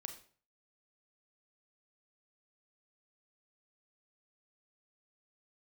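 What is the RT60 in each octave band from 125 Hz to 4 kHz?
0.55, 0.45, 0.45, 0.45, 0.40, 0.35 seconds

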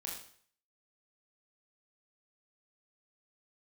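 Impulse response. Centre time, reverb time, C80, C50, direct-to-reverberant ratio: 41 ms, 0.55 s, 7.0 dB, 3.0 dB, −2.5 dB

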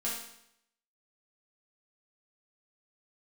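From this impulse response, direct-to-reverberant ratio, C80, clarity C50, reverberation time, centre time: −7.0 dB, 5.5 dB, 2.0 dB, 0.75 s, 50 ms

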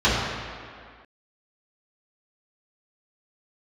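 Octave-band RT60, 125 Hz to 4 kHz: 1.6, 1.9, 1.9, 2.2, 2.1, 1.6 seconds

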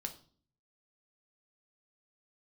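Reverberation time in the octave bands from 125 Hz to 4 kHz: 0.85, 0.70, 0.50, 0.45, 0.35, 0.40 seconds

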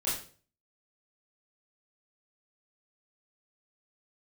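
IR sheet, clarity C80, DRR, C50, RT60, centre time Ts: 9.0 dB, −10.0 dB, 4.0 dB, 0.45 s, 44 ms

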